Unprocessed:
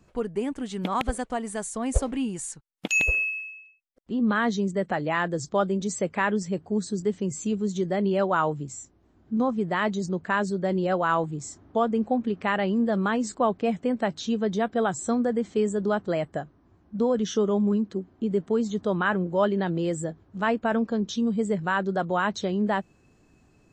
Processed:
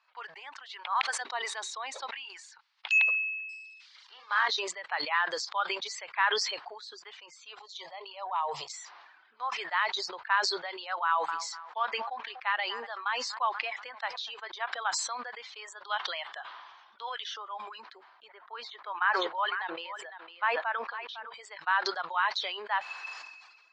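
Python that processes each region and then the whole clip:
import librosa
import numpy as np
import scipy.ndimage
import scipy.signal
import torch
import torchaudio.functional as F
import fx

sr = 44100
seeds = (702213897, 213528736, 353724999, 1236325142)

y = fx.chain(x, sr, fx.hum_notches(base_hz=50, count=8),
    fx.small_body(hz=(350.0, 3800.0), ring_ms=20, db=15), at=(1.21, 2.11))
y = fx.chain(y, sr, fx.crossing_spikes(level_db=-30.5),
    fx.bandpass_edges(low_hz=380.0, high_hz=6200.0),
    fx.doubler(ms=42.0, db=-5.0), at=(3.49, 4.48))
y = fx.chain(y, sr, fx.fixed_phaser(hz=640.0, stages=4),
    fx.transient(attack_db=-1, sustain_db=8),
    fx.band_widen(depth_pct=70), at=(7.59, 8.73))
y = fx.chain(y, sr, fx.echo_wet_lowpass(ms=242, feedback_pct=33, hz=1900.0, wet_db=-21),
    fx.upward_expand(threshold_db=-33.0, expansion=1.5), at=(11.04, 14.39))
y = fx.chain(y, sr, fx.lowpass(hz=9000.0, slope=12),
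    fx.peak_eq(hz=3300.0, db=11.0, octaves=0.41), at=(15.84, 17.26))
y = fx.chain(y, sr, fx.bandpass_edges(low_hz=200.0, high_hz=2600.0),
    fx.echo_single(ms=505, db=-11.0), at=(18.28, 21.34))
y = scipy.signal.sosfilt(scipy.signal.ellip(3, 1.0, 60, [920.0, 4600.0], 'bandpass', fs=sr, output='sos'), y)
y = fx.dereverb_blind(y, sr, rt60_s=1.2)
y = fx.sustainer(y, sr, db_per_s=40.0)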